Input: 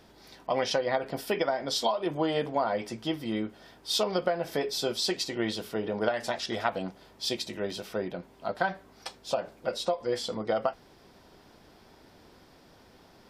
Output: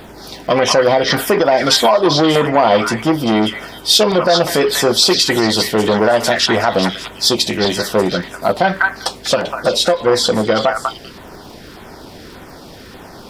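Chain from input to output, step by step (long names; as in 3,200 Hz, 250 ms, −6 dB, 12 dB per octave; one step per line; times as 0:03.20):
surface crackle 93 per second −55 dBFS
on a send: echo through a band-pass that steps 196 ms, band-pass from 1,500 Hz, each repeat 1.4 octaves, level −2 dB
on the sum: auto-filter notch saw down 1.7 Hz 600–6,200 Hz
boost into a limiter +20.5 dB
saturating transformer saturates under 630 Hz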